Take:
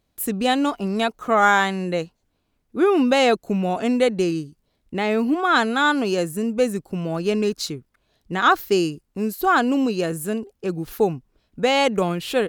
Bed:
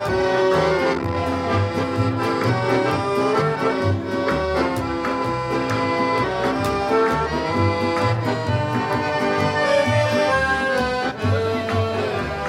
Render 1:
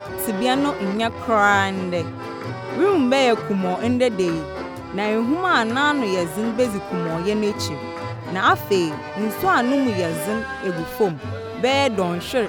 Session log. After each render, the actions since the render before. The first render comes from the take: add bed -10 dB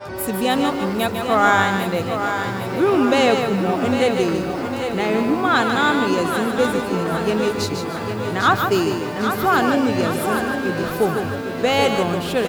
on a send: feedback echo 0.803 s, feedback 55%, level -8 dB; on the sum: lo-fi delay 0.15 s, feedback 35%, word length 7-bit, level -6 dB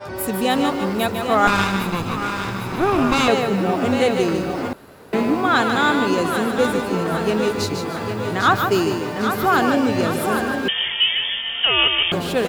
1.47–3.28 minimum comb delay 0.79 ms; 4.73–5.13 room tone; 10.68–12.12 inverted band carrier 3400 Hz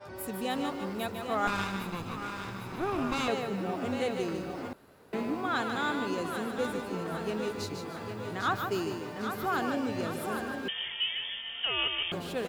gain -13.5 dB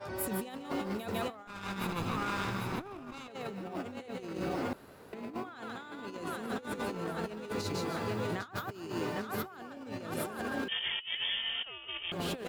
negative-ratio compressor -37 dBFS, ratio -0.5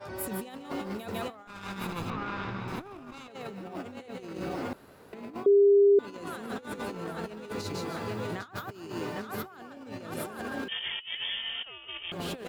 2.1–2.68 air absorption 190 m; 5.46–5.99 bleep 402 Hz -16 dBFS

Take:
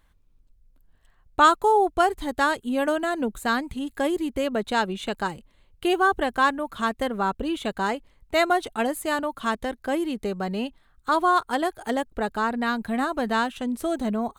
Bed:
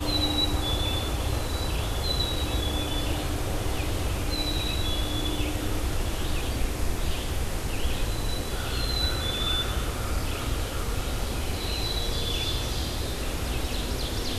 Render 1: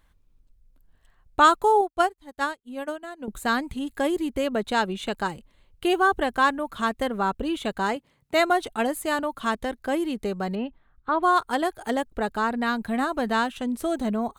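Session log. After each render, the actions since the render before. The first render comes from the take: 1.81–3.28 upward expander 2.5:1, over -40 dBFS; 7.96–8.4 resonant high-pass 140 Hz, resonance Q 1.6; 10.55–11.23 air absorption 450 m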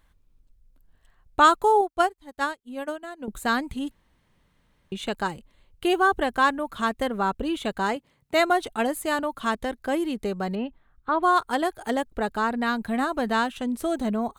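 3.91–4.92 room tone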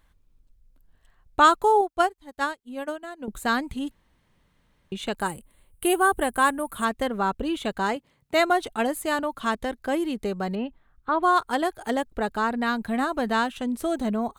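5.2–6.85 resonant high shelf 7400 Hz +10.5 dB, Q 3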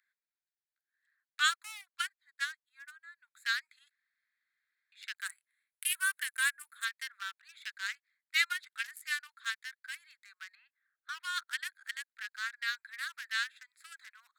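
Wiener smoothing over 15 samples; steep high-pass 1600 Hz 48 dB/oct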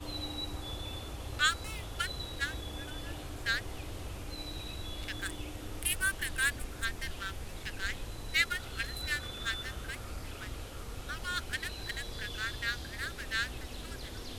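add bed -13.5 dB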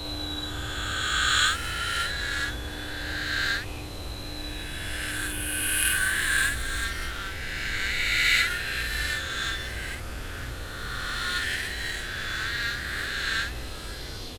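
spectral swells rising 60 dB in 2.73 s; doubler 50 ms -4 dB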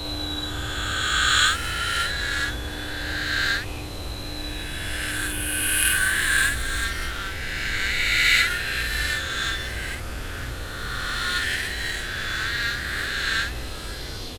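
gain +3.5 dB

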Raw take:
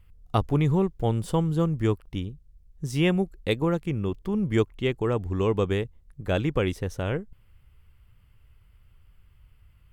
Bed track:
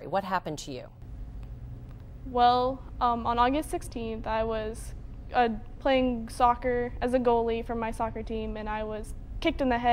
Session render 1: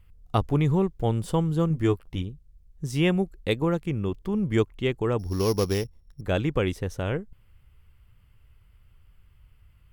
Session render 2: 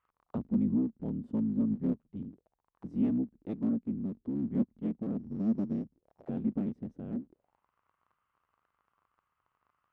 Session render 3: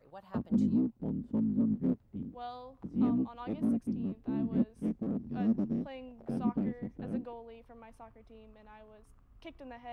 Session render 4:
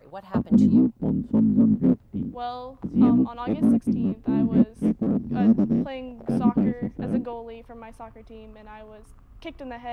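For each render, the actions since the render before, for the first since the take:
1.69–2.22 doubler 12 ms -6 dB; 5.19–6.21 sample sorter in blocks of 8 samples
cycle switcher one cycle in 3, inverted; auto-wah 230–1300 Hz, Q 4.4, down, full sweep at -27.5 dBFS
add bed track -21.5 dB
gain +11 dB

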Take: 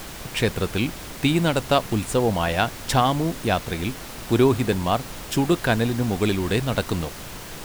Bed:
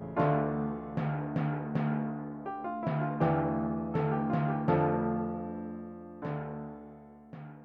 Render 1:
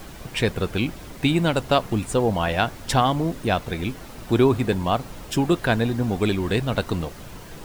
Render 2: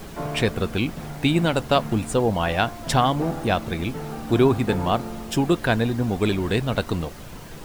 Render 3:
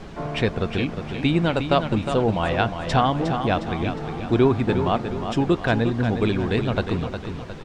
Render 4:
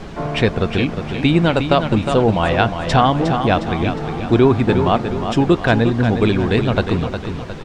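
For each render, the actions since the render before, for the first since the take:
denoiser 8 dB, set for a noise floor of -37 dBFS
add bed -3.5 dB
air absorption 120 m; feedback echo 0.359 s, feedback 46%, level -8 dB
gain +6 dB; limiter -2 dBFS, peak gain reduction 2.5 dB

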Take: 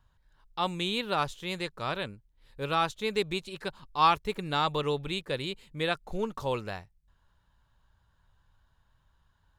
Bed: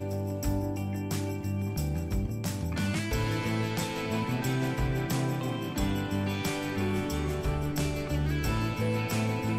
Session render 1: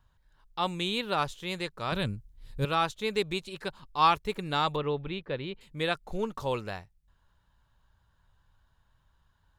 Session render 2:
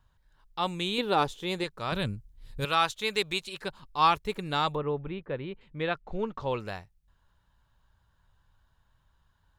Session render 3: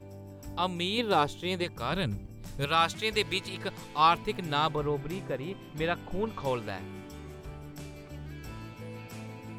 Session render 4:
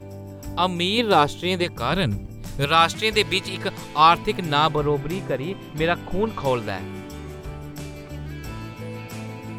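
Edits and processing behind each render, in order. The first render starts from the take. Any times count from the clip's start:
1.92–2.65 tone controls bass +13 dB, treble +7 dB; 4.76–5.61 air absorption 300 m
0.98–1.64 small resonant body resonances 300/430/790/3500 Hz, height 8 dB, ringing for 25 ms; 2.6–3.61 tilt shelf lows -5 dB, about 680 Hz; 4.74–6.59 LPF 1600 Hz -> 3700 Hz
add bed -13.5 dB
gain +8.5 dB; limiter -3 dBFS, peak gain reduction 1 dB

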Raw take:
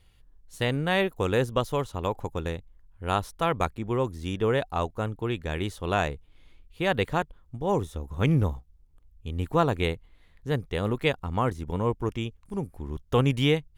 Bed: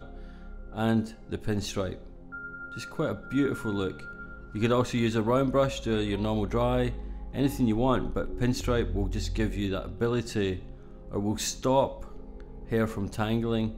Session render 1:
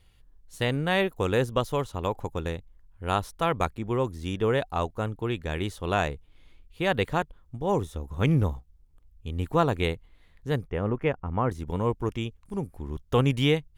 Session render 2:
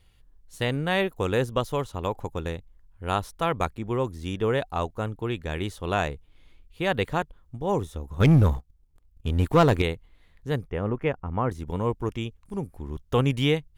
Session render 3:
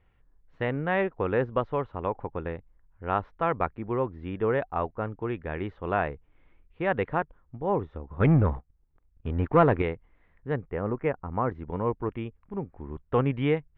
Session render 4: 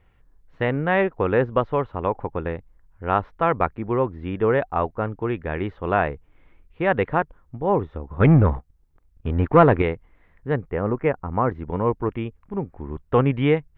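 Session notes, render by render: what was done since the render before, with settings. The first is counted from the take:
10.67–11.5 running mean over 11 samples
8.2–9.82 sample leveller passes 2
LPF 2100 Hz 24 dB/oct; low shelf 160 Hz -6.5 dB
gain +6 dB

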